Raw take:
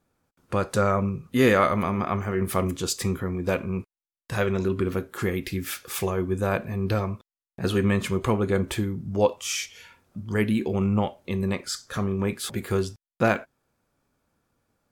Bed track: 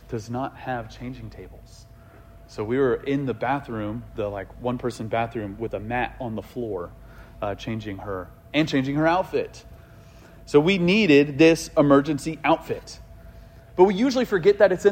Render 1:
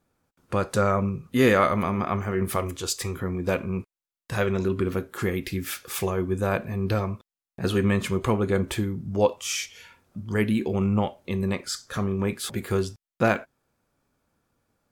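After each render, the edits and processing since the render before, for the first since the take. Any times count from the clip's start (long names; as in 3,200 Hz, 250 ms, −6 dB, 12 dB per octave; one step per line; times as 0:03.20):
0:02.56–0:03.16: parametric band 200 Hz −11 dB 1.2 octaves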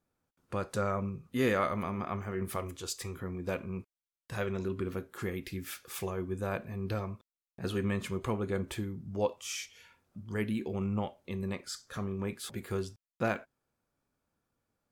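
level −9.5 dB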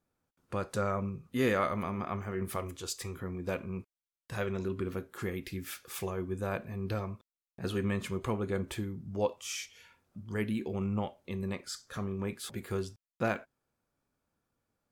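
no processing that can be heard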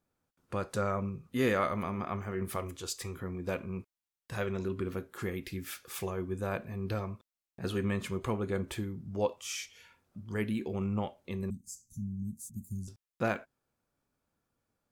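0:11.50–0:12.88: Chebyshev band-stop filter 230–6,400 Hz, order 4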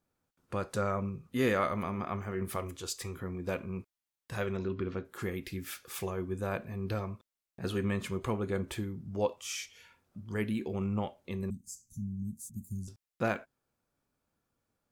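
0:04.57–0:05.05: low-pass filter 5,400 Hz 24 dB per octave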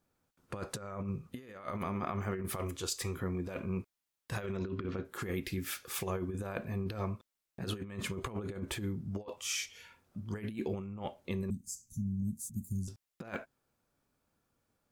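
compressor whose output falls as the input rises −36 dBFS, ratio −0.5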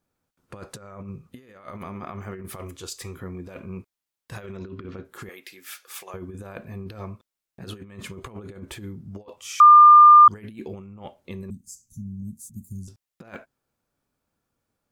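0:05.29–0:06.14: high-pass filter 640 Hz
0:09.60–0:10.28: beep over 1,200 Hz −6.5 dBFS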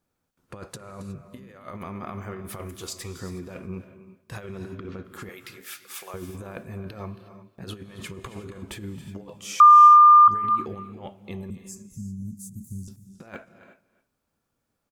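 single-tap delay 273 ms −16 dB
reverb whose tail is shaped and stops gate 390 ms rising, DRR 11.5 dB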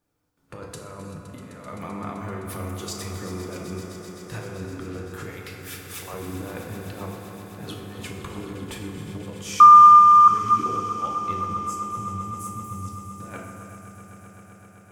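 echo that builds up and dies away 129 ms, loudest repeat 5, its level −14.5 dB
feedback delay network reverb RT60 1.7 s, low-frequency decay 1×, high-frequency decay 0.5×, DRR 0.5 dB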